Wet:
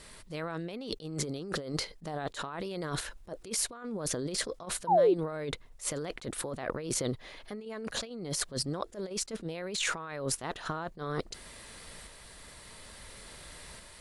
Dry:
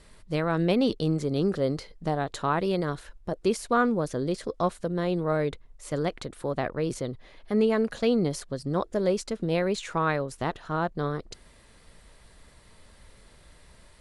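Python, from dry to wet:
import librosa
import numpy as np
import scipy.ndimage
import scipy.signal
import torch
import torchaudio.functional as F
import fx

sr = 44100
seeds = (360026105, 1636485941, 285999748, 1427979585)

p1 = fx.tilt_eq(x, sr, slope=1.5)
p2 = fx.level_steps(p1, sr, step_db=23)
p3 = p1 + (p2 * 10.0 ** (-1.0 / 20.0))
p4 = fx.tremolo_shape(p3, sr, shape='saw_up', hz=0.58, depth_pct=35)
p5 = fx.over_compress(p4, sr, threshold_db=-36.0, ratio=-1.0)
p6 = fx.spec_paint(p5, sr, seeds[0], shape='fall', start_s=4.87, length_s=0.27, low_hz=330.0, high_hz=1000.0, level_db=-22.0)
y = fx.attack_slew(p6, sr, db_per_s=260.0)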